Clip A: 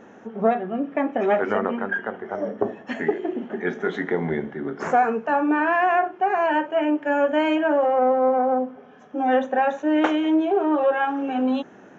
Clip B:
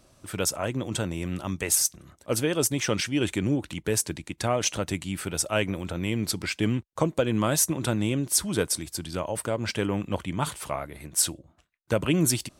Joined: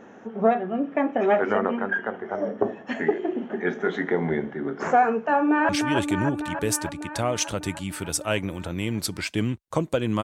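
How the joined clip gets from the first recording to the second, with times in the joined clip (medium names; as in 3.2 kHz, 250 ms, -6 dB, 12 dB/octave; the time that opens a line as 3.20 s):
clip A
5.34–5.69 s: echo throw 300 ms, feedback 75%, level -5.5 dB
5.69 s: go over to clip B from 2.94 s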